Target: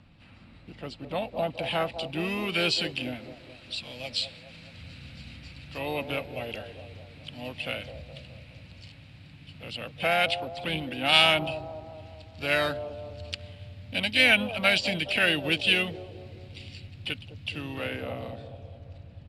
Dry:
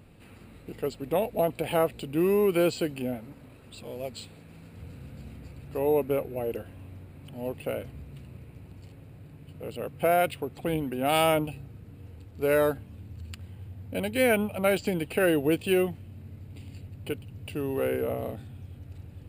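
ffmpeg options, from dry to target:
ffmpeg -i in.wav -filter_complex "[0:a]lowpass=frequency=4200:width_type=q:width=1.5,equalizer=frequency=410:width_type=o:width=0.5:gain=-14,asplit=2[link_01][link_02];[link_02]asetrate=52444,aresample=44100,atempo=0.840896,volume=-11dB[link_03];[link_01][link_03]amix=inputs=2:normalize=0,acrossover=split=350|830|2000[link_04][link_05][link_06][link_07];[link_05]aecho=1:1:210|420|630|840|1050|1260|1470:0.631|0.347|0.191|0.105|0.0577|0.0318|0.0175[link_08];[link_07]dynaudnorm=framelen=390:gausssize=11:maxgain=13.5dB[link_09];[link_04][link_08][link_06][link_09]amix=inputs=4:normalize=0,volume=-2dB" out.wav

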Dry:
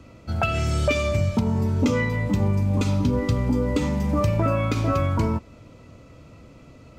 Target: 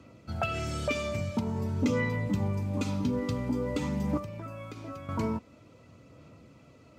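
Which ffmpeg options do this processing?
ffmpeg -i in.wav -filter_complex "[0:a]asettb=1/sr,asplit=3[link_01][link_02][link_03];[link_01]atrim=end=4.174[link_04];[link_02]atrim=start=4.17:end=5.09,asetpts=PTS-STARTPTS,afade=type=in:duration=0.004:curve=qsin,afade=type=out:start_time=0.916:duration=0.004:curve=qsin,acrossover=split=210|1500|5200[link_05][link_06][link_07][link_08];[link_05]acompressor=threshold=-36dB:ratio=4[link_09];[link_06]acompressor=threshold=-38dB:ratio=4[link_10];[link_07]acompressor=threshold=-48dB:ratio=4[link_11];[link_08]acompressor=threshold=-58dB:ratio=4[link_12];[link_09][link_10][link_11][link_12]amix=inputs=4:normalize=0[link_13];[link_03]atrim=start=5.086[link_14];[link_04][link_13]acrossfade=duration=0.004:curve1=hsin:curve2=qsin[link_15];[link_15][link_14]acrossfade=duration=0.004:curve1=qsin:curve2=hsin,aphaser=in_gain=1:out_gain=1:delay=4.5:decay=0.26:speed=0.48:type=sinusoidal,highpass=100,volume=-7dB" out.wav

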